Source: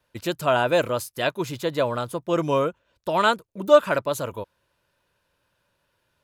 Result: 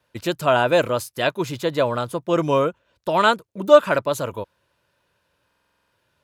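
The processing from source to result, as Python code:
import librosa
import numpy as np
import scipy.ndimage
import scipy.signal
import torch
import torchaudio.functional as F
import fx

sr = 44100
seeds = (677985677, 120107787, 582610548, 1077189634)

y = scipy.signal.sosfilt(scipy.signal.butter(2, 54.0, 'highpass', fs=sr, output='sos'), x)
y = fx.high_shelf(y, sr, hz=9800.0, db=-4.5)
y = fx.buffer_glitch(y, sr, at_s=(5.46,), block=2048, repeats=9)
y = y * 10.0 ** (3.0 / 20.0)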